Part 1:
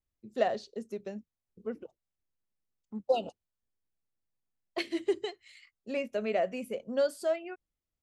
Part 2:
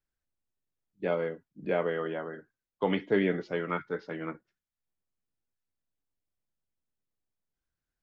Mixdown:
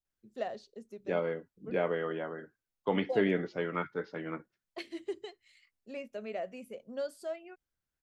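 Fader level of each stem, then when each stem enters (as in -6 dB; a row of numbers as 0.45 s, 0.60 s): -8.5 dB, -2.0 dB; 0.00 s, 0.05 s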